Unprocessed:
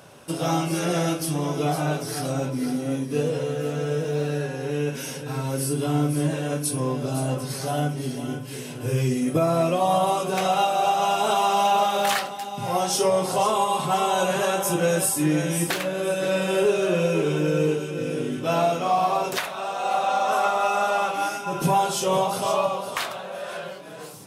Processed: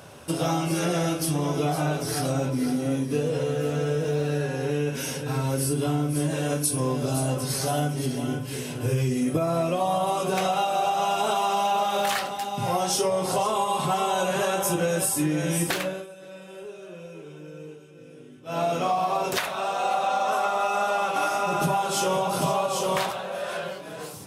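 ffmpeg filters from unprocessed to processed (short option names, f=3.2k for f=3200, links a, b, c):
-filter_complex "[0:a]asettb=1/sr,asplit=3[a][b][c];[a]atrim=end=6.154[d];[b]atrim=start=6.15:end=8.06,asetpts=PTS-STARTPTS,afade=t=in:d=0.004:c=qsin,afade=t=out:st=1.906:d=0.004:c=qsin,bass=f=250:g=-1,treble=f=4k:g=4[e];[c]atrim=start=8.056[f];[d][e]acrossfade=d=0.004:c1=hsin:c2=qsin[g];[g][f]acrossfade=d=0.004:c1=qsin:c2=hsin,asettb=1/sr,asplit=3[h][i][j];[h]atrim=end=20.374[k];[i]atrim=start=20.37:end=23.11,asetpts=PTS-STARTPTS,afade=t=in:d=0.004:c=qsin,afade=t=out:st=2.736:d=0.004:c=qsin,aecho=1:1:790:0.631,atrim=end_sample=120834[l];[j]atrim=start=23.106[m];[k][l]acrossfade=d=0.004:c1=hsin:c2=qsin[n];[n][m]acrossfade=d=0.004:c1=qsin:c2=hsin,asplit=3[o][p][q];[o]atrim=end=16.07,asetpts=PTS-STARTPTS,afade=t=out:st=15.75:d=0.32:silence=0.0841395[r];[p]atrim=start=16.07:end=18.45,asetpts=PTS-STARTPTS,volume=-21.5dB[s];[q]atrim=start=18.45,asetpts=PTS-STARTPTS,afade=t=in:d=0.32:silence=0.0841395[t];[r][s][t]concat=n=3:v=0:a=1,equalizer=f=83:w=4.2:g=12.5,acompressor=threshold=-23dB:ratio=6,volume=2dB"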